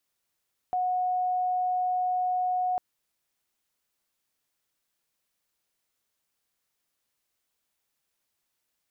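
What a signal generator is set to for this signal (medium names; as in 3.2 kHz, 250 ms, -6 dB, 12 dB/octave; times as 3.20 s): tone sine 731 Hz -24 dBFS 2.05 s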